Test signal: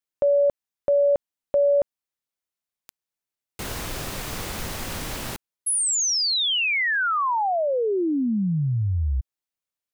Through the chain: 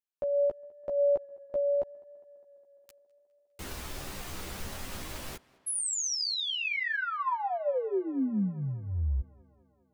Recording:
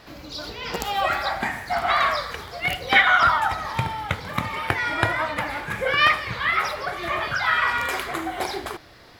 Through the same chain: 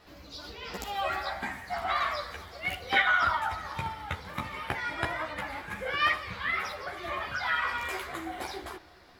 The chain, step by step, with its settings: chorus voices 6, 0.28 Hz, delay 13 ms, depth 2.9 ms; tape echo 0.205 s, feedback 76%, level -23 dB, low-pass 4100 Hz; gain -6 dB

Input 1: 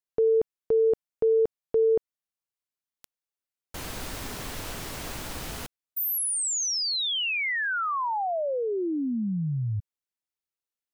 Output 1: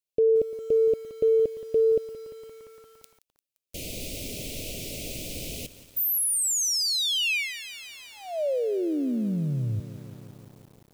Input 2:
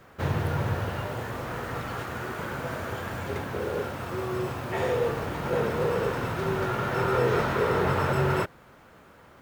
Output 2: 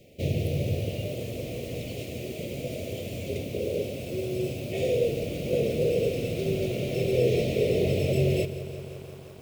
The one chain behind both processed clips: elliptic band-stop 610–2400 Hz, stop band 40 dB; low shelf 120 Hz -4 dB; lo-fi delay 0.173 s, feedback 80%, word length 8-bit, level -14.5 dB; gain +2.5 dB

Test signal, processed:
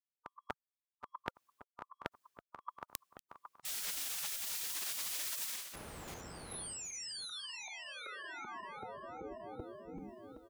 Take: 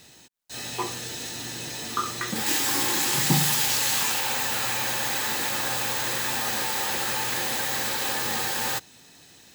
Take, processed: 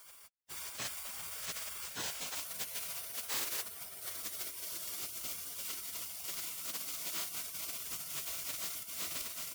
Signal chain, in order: regenerating reverse delay 0.384 s, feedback 43%, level -5 dB; HPF 100 Hz 6 dB/oct; reverse; compressor 8:1, threshold -36 dBFS; reverse; outdoor echo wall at 190 m, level -13 dB; spectral gate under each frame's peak -15 dB weak; gain +5.5 dB

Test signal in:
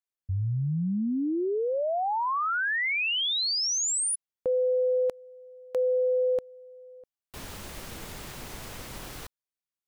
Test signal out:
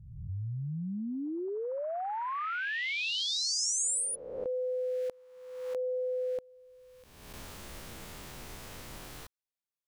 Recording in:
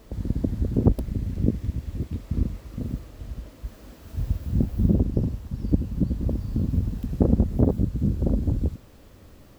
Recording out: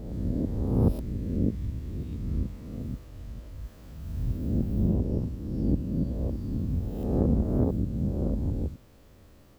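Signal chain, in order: spectral swells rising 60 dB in 1.22 s; gain -8 dB

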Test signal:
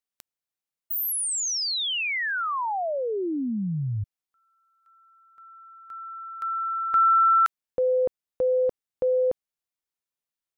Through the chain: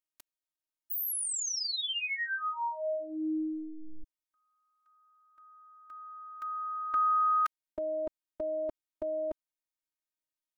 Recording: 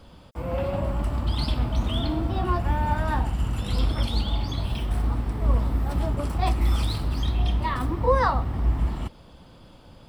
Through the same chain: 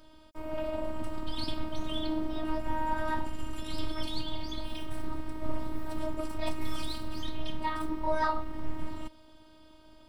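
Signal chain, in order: robotiser 313 Hz; gain -3.5 dB

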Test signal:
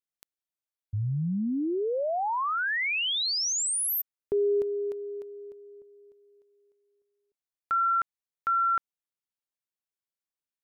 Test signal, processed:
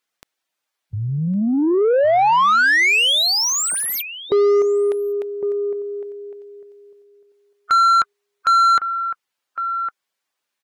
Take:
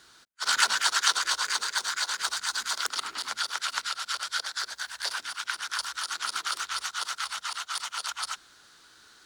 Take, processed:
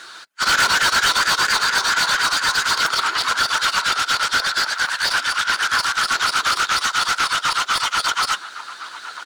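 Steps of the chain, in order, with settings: bin magnitudes rounded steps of 15 dB; outdoor echo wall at 190 m, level -14 dB; overdrive pedal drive 27 dB, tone 3300 Hz, clips at -6.5 dBFS

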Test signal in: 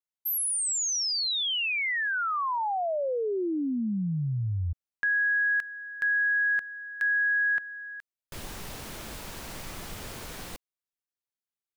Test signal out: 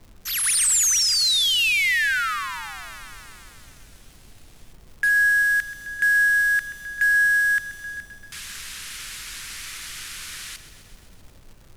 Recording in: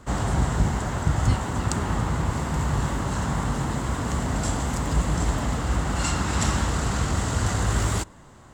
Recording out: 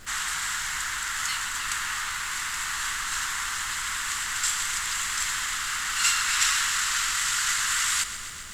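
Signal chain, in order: CVSD 64 kbps; inverse Chebyshev high-pass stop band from 560 Hz, stop band 50 dB; added noise brown -55 dBFS; crackle 210/s -49 dBFS; lo-fi delay 0.13 s, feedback 80%, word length 10-bit, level -13 dB; gain +8 dB

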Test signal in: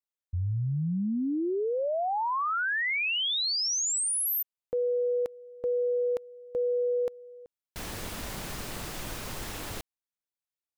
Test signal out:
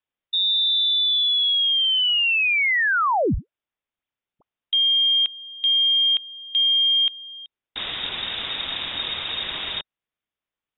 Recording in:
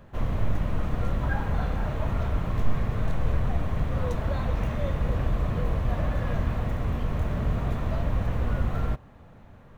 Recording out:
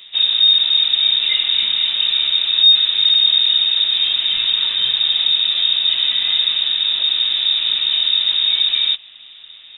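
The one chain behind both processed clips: bell 61 Hz -4.5 dB 1.1 oct; soft clip -17 dBFS; inverted band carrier 3700 Hz; gain +9 dB

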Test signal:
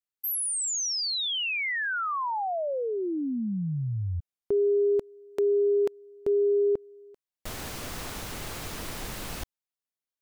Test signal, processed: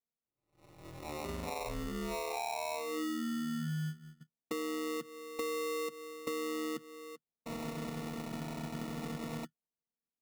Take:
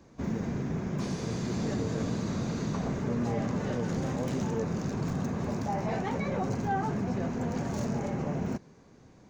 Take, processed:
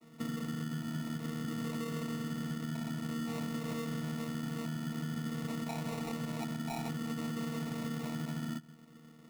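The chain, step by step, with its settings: chord vocoder bare fifth, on D#3; LPF 4000 Hz 24 dB/oct; limiter -25 dBFS; compressor, threshold -36 dBFS; sample-rate reducer 1600 Hz, jitter 0%; gain +1.5 dB

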